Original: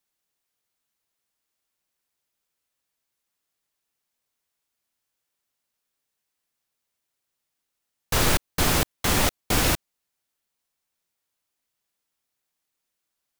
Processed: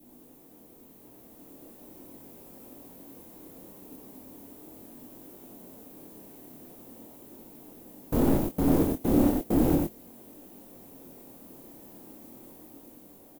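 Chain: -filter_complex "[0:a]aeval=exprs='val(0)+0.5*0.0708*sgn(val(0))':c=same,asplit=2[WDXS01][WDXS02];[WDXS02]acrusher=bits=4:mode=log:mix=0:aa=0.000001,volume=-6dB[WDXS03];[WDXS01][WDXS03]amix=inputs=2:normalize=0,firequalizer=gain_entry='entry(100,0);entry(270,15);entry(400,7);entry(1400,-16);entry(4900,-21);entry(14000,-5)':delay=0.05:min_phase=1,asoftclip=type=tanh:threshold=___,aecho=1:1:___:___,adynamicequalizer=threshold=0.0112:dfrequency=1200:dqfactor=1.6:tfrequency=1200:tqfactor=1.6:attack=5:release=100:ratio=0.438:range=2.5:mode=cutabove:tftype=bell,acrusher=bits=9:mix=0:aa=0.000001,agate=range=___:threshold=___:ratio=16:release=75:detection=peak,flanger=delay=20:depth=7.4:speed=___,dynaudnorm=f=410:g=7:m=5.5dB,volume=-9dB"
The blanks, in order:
-10.5dB, 93, 0.668, -12dB, -26dB, 0.38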